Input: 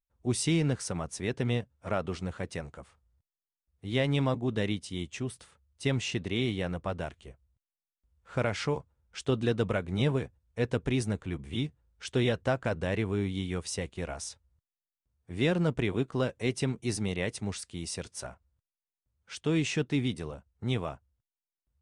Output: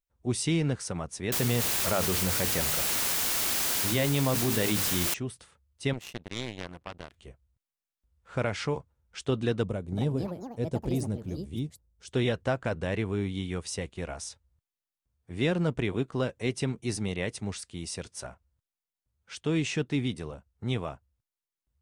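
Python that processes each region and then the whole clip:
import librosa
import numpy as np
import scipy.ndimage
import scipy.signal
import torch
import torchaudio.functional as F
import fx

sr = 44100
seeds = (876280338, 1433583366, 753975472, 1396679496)

y = fx.chain(x, sr, fx.hum_notches(base_hz=50, count=9),
    fx.quant_dither(seeds[0], bits=6, dither='triangular'),
    fx.env_flatten(amount_pct=70), at=(1.32, 5.14))
y = fx.chain(y, sr, fx.zero_step(step_db=-41.5),
    fx.power_curve(exponent=3.0),
    fx.env_flatten(amount_pct=50), at=(5.93, 7.15))
y = fx.chain(y, sr, fx.peak_eq(hz=1900.0, db=-14.5, octaves=2.4),
    fx.echo_pitch(ms=293, semitones=5, count=2, db_per_echo=-6.0), at=(9.63, 12.12))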